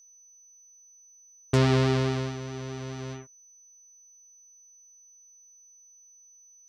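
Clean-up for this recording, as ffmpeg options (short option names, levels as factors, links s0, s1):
-af "bandreject=f=6000:w=30"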